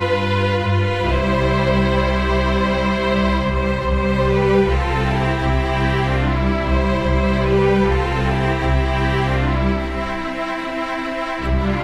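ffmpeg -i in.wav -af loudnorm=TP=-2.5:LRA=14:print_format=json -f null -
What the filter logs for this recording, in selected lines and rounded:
"input_i" : "-18.9",
"input_tp" : "-3.7",
"input_lra" : "3.1",
"input_thresh" : "-28.9",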